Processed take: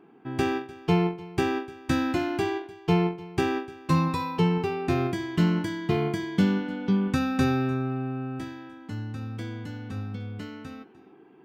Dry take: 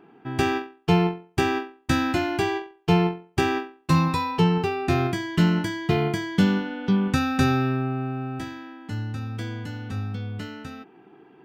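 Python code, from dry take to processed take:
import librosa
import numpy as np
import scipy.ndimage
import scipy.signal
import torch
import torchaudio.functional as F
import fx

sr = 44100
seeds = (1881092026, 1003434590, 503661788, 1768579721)

p1 = fx.peak_eq(x, sr, hz=290.0, db=4.5, octaves=1.8)
p2 = fx.comb_fb(p1, sr, f0_hz=520.0, decay_s=0.4, harmonics='all', damping=0.0, mix_pct=60)
p3 = fx.small_body(p2, sr, hz=(1100.0, 2200.0), ring_ms=100, db=10)
p4 = p3 + fx.echo_single(p3, sr, ms=300, db=-19.5, dry=0)
y = p4 * 10.0 ** (2.0 / 20.0)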